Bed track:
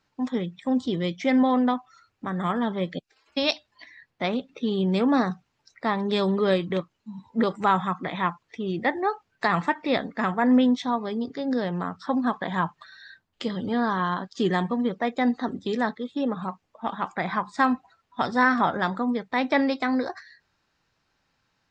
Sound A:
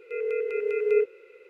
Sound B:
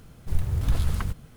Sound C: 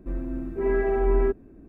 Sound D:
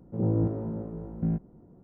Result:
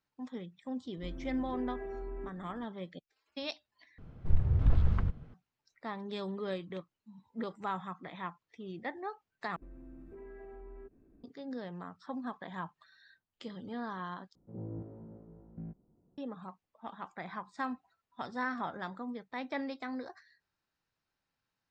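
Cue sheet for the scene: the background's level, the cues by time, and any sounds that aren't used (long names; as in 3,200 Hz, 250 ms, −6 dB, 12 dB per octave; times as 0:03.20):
bed track −15 dB
0:00.97: mix in C −8 dB + downward compressor, threshold −30 dBFS
0:03.98: overwrite with B −1.5 dB + head-to-tape spacing loss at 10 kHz 38 dB
0:09.56: overwrite with C −14.5 dB + downward compressor, threshold −32 dBFS
0:14.35: overwrite with D −16.5 dB
not used: A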